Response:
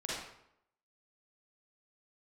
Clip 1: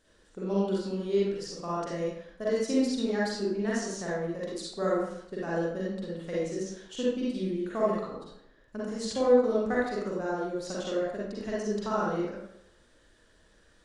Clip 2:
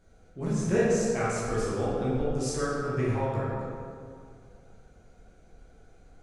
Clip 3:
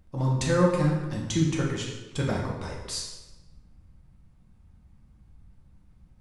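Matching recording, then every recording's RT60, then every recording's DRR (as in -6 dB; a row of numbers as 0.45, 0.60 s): 1; 0.75, 2.2, 1.1 s; -7.0, -9.0, -3.5 dB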